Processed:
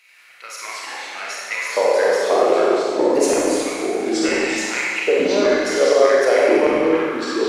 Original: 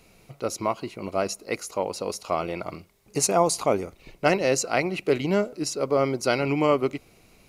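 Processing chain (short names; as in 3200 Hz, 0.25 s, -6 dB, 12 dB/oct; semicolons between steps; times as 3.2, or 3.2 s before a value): high shelf 3500 Hz -8 dB; compressor, threshold -24 dBFS, peak gain reduction 9.5 dB; LFO high-pass square 0.3 Hz 490–2000 Hz; echoes that change speed 86 ms, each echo -4 st, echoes 2; Schroeder reverb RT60 1.9 s, combs from 31 ms, DRR -4.5 dB; gain +4 dB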